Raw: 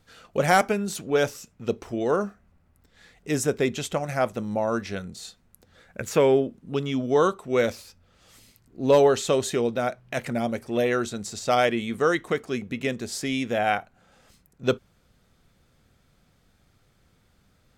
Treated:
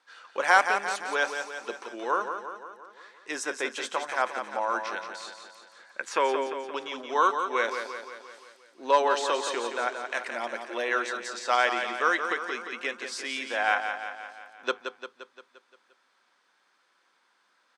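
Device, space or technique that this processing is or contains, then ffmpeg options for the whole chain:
phone speaker on a table: -af "highpass=f=400:w=0.5412,highpass=f=400:w=1.3066,equalizer=f=440:t=q:w=4:g=-9,equalizer=f=650:t=q:w=4:g=-7,equalizer=f=1000:t=q:w=4:g=9,equalizer=f=1600:t=q:w=4:g=6,equalizer=f=7200:t=q:w=4:g=-6,lowpass=f=8500:w=0.5412,lowpass=f=8500:w=1.3066,bandreject=f=60:t=h:w=6,bandreject=f=120:t=h:w=6,aecho=1:1:174|348|522|696|870|1044|1218:0.422|0.24|0.137|0.0781|0.0445|0.0254|0.0145,volume=0.841"

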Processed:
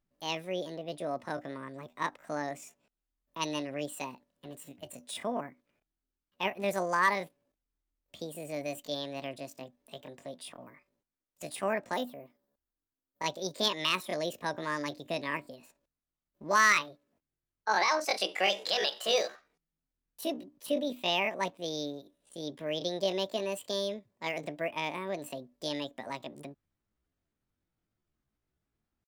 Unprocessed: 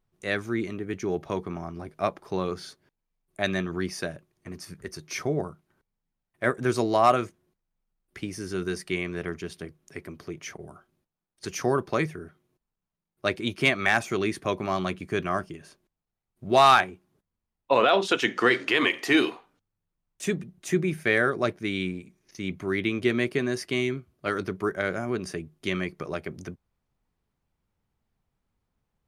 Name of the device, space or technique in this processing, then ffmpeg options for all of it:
chipmunk voice: -filter_complex "[0:a]asettb=1/sr,asplit=3[s0][s1][s2];[s0]atrim=end=11.954[s3];[s1]atrim=start=11.95:end=13.25,asetpts=PTS-STARTPTS,afade=t=in:d=0.004:c=qsin,afade=t=out:st=1.296:d=0.004:c=qsin,equalizer=f=100:t=o:w=0.67:g=-5,equalizer=f=1600:t=o:w=0.67:g=-10,equalizer=f=4000:t=o:w=0.67:g=-5,equalizer=f=10000:t=o:w=0.67:g=10[s4];[s2]atrim=start=13.246[s5];[s3][s4]acrossfade=d=0.004:c1=hsin:c2=qsin[s6];[s6][s5]acrossfade=d=0.004:c1=qsin:c2=hsin,asetrate=70004,aresample=44100,atempo=0.629961,volume=0.473"

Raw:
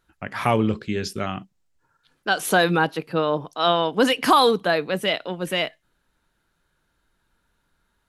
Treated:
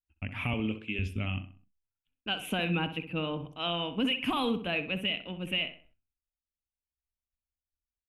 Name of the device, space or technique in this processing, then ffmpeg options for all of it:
car stereo with a boomy subwoofer: -filter_complex "[0:a]asettb=1/sr,asplit=3[s0][s1][s2];[s0]atrim=end=0.534[s3];[s1]atrim=start=0.53:end=0.99,asetpts=PTS-STARTPTS,afade=t=in:d=0.004:c=qsin,afade=t=out:st=0.456:d=0.004:c=qsin,highpass=300[s4];[s2]atrim=start=0.986[s5];[s3][s4]acrossfade=d=0.004:c1=hsin:c2=qsin[s6];[s6][s5]acrossfade=d=0.004:c1=qsin:c2=hsin,agate=range=0.0224:threshold=0.00316:ratio=3:detection=peak,firequalizer=gain_entry='entry(130,0);entry(250,9);entry(370,-6);entry(1700,-9);entry(2600,13);entry(4300,-18);entry(10000,-9)':delay=0.05:min_phase=1,lowshelf=f=120:t=q:w=1.5:g=13,alimiter=limit=0.237:level=0:latency=1:release=147,asplit=2[s7][s8];[s8]adelay=64,lowpass=f=2500:p=1,volume=0.316,asplit=2[s9][s10];[s10]adelay=64,lowpass=f=2500:p=1,volume=0.4,asplit=2[s11][s12];[s12]adelay=64,lowpass=f=2500:p=1,volume=0.4,asplit=2[s13][s14];[s14]adelay=64,lowpass=f=2500:p=1,volume=0.4[s15];[s7][s9][s11][s13][s15]amix=inputs=5:normalize=0,volume=0.422"

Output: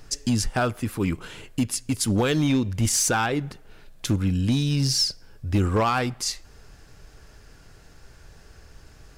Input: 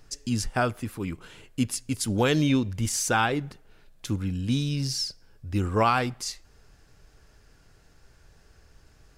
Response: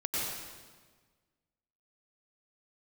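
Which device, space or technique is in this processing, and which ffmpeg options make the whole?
limiter into clipper: -af "alimiter=limit=0.112:level=0:latency=1:release=446,asoftclip=type=hard:threshold=0.0708,volume=2.37"

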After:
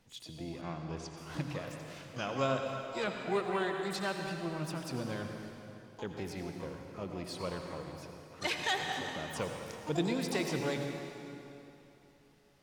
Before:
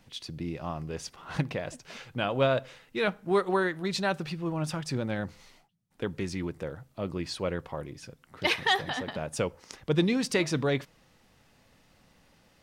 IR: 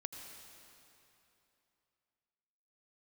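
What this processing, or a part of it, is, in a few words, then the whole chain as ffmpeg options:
shimmer-style reverb: -filter_complex "[0:a]asplit=2[s0][s1];[s1]asetrate=88200,aresample=44100,atempo=0.5,volume=0.355[s2];[s0][s2]amix=inputs=2:normalize=0[s3];[1:a]atrim=start_sample=2205[s4];[s3][s4]afir=irnorm=-1:irlink=0,asplit=3[s5][s6][s7];[s5]afade=t=out:st=0.61:d=0.02[s8];[s6]lowpass=f=7600:w=0.5412,lowpass=f=7600:w=1.3066,afade=t=in:st=0.61:d=0.02,afade=t=out:st=1.16:d=0.02[s9];[s7]afade=t=in:st=1.16:d=0.02[s10];[s8][s9][s10]amix=inputs=3:normalize=0,volume=0.596"

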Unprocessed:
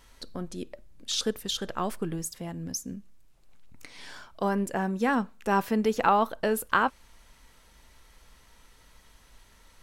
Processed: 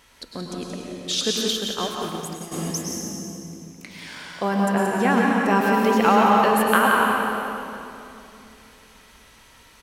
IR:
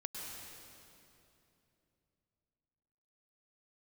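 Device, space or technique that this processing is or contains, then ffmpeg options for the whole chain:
PA in a hall: -filter_complex "[0:a]highpass=f=120:p=1,equalizer=f=2500:t=o:w=0.81:g=4,aecho=1:1:177:0.447[s0];[1:a]atrim=start_sample=2205[s1];[s0][s1]afir=irnorm=-1:irlink=0,asplit=3[s2][s3][s4];[s2]afade=t=out:st=1.51:d=0.02[s5];[s3]agate=range=0.0224:threshold=0.0447:ratio=3:detection=peak,afade=t=in:st=1.51:d=0.02,afade=t=out:st=2.51:d=0.02[s6];[s4]afade=t=in:st=2.51:d=0.02[s7];[s5][s6][s7]amix=inputs=3:normalize=0,volume=2.37"

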